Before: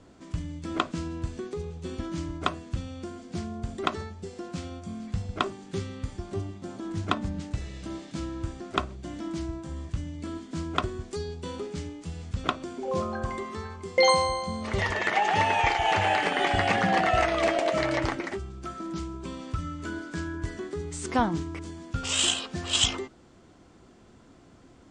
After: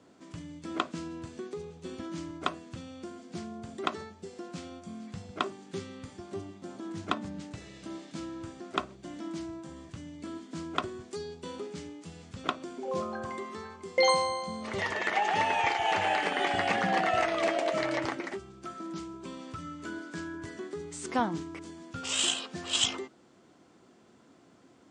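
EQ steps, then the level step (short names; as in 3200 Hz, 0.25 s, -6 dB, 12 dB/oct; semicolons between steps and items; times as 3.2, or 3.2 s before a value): HPF 170 Hz 12 dB/oct; -3.5 dB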